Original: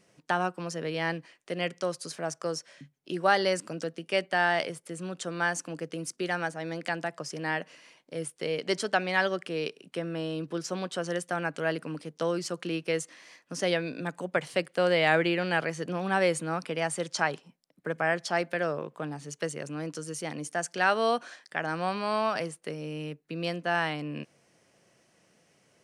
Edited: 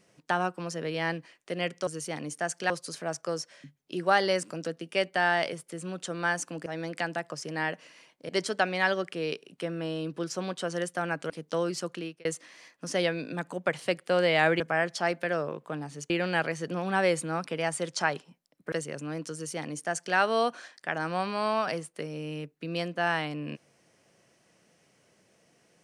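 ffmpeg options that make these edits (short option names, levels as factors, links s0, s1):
-filter_complex "[0:a]asplit=10[s0][s1][s2][s3][s4][s5][s6][s7][s8][s9];[s0]atrim=end=1.872[s10];[s1]atrim=start=20.008:end=20.842[s11];[s2]atrim=start=1.868:end=5.832[s12];[s3]atrim=start=6.538:end=8.172[s13];[s4]atrim=start=8.628:end=11.642[s14];[s5]atrim=start=11.978:end=12.93,asetpts=PTS-STARTPTS,afade=t=out:st=0.582:d=0.37[s15];[s6]atrim=start=12.93:end=15.282,asetpts=PTS-STARTPTS,afade=t=in:d=0.004:c=hsin[s16];[s7]atrim=start=17.898:end=19.402[s17];[s8]atrim=start=15.278:end=17.902[s18];[s9]atrim=start=19.398[s19];[s10][s11]acrossfade=d=0.004:c1=hsin:c2=hsin[s20];[s20][s12]acrossfade=d=0.004:c1=hsin:c2=hsin[s21];[s21][s13]acrossfade=d=0.004:c1=hsin:c2=hsin[s22];[s22][s14]acrossfade=d=0.004:c1=hsin:c2=hsin[s23];[s15][s16]concat=n=2:v=0:a=1[s24];[s23][s24]acrossfade=d=0.004:c1=hsin:c2=hsin[s25];[s25][s17]acrossfade=d=0.004:c1=hsin:c2=hsin[s26];[s26][s18]acrossfade=d=0.004:c1=hsin:c2=hsin[s27];[s27][s19]acrossfade=d=0.004:c1=hsin:c2=hsin"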